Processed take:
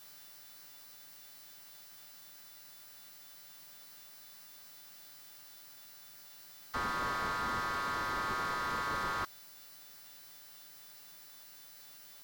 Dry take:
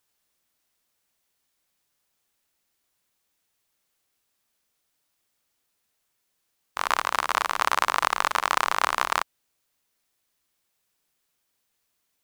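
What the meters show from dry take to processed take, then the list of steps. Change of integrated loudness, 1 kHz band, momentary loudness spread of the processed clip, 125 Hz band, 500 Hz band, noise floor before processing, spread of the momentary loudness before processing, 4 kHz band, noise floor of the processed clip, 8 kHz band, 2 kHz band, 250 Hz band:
-12.5 dB, -10.5 dB, 17 LU, n/a, -8.0 dB, -76 dBFS, 6 LU, -11.5 dB, -54 dBFS, -12.0 dB, -9.5 dB, +0.5 dB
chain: frequency quantiser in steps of 2 st; fixed phaser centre 2600 Hz, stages 6; negative-ratio compressor -34 dBFS, ratio -1; slew limiter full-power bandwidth 15 Hz; gain +6 dB

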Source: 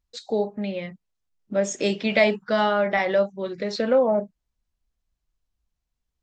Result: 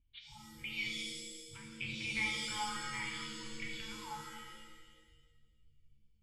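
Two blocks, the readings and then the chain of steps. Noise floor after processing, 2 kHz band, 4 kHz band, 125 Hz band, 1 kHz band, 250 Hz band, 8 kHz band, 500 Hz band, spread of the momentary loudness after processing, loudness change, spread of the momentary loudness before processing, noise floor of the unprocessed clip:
-70 dBFS, -10.5 dB, -6.0 dB, n/a, -16.5 dB, -21.0 dB, -7.5 dB, -35.0 dB, 18 LU, -16.0 dB, 10 LU, -82 dBFS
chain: treble ducked by the level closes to 1100 Hz, closed at -20.5 dBFS; FFT band-reject 160–830 Hz; vocal tract filter i; shimmer reverb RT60 1.4 s, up +7 st, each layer -2 dB, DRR 0.5 dB; gain +15.5 dB

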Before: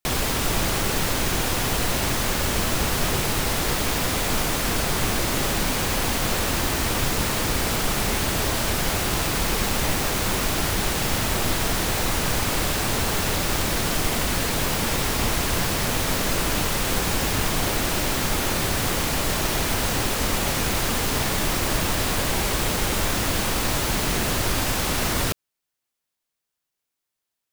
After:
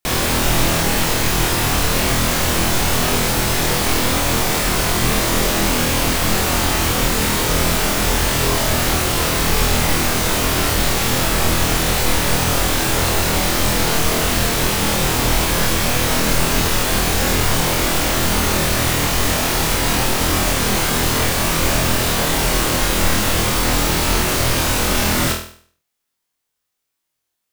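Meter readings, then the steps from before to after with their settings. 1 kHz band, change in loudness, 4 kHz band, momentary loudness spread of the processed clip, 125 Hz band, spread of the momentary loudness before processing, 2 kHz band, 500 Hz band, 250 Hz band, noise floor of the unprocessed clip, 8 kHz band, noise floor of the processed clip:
+6.0 dB, +6.0 dB, +6.0 dB, 0 LU, +6.0 dB, 0 LU, +6.0 dB, +6.0 dB, +6.0 dB, -83 dBFS, +6.0 dB, -77 dBFS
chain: flutter echo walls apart 4.2 m, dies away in 0.5 s; gain +3 dB

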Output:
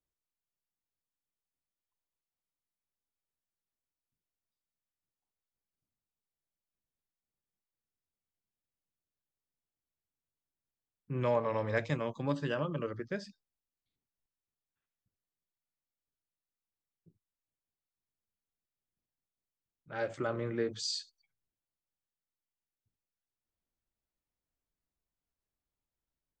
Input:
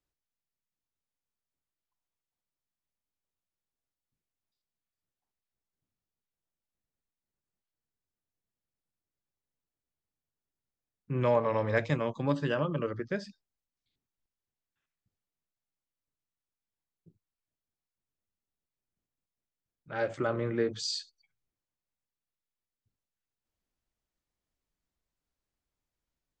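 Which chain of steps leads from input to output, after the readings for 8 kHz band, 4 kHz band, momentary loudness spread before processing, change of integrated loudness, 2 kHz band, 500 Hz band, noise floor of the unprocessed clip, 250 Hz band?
-1.0 dB, -2.0 dB, 9 LU, -4.0 dB, -3.5 dB, -4.0 dB, under -85 dBFS, -4.0 dB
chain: high shelf 5500 Hz +5 dB; mismatched tape noise reduction decoder only; gain -4 dB

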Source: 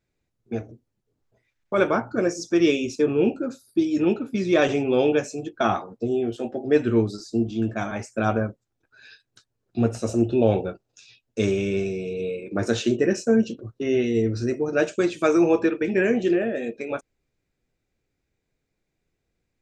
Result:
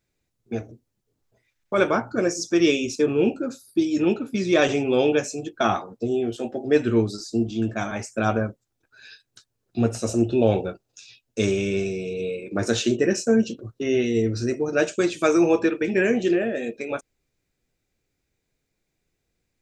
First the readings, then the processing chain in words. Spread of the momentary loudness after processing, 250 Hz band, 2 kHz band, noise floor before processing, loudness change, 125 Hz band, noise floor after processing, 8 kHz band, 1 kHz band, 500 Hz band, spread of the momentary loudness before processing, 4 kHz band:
10 LU, 0.0 dB, +1.5 dB, -79 dBFS, +0.5 dB, 0.0 dB, -78 dBFS, +5.5 dB, +0.5 dB, 0.0 dB, 10 LU, +3.5 dB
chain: high shelf 3500 Hz +7 dB

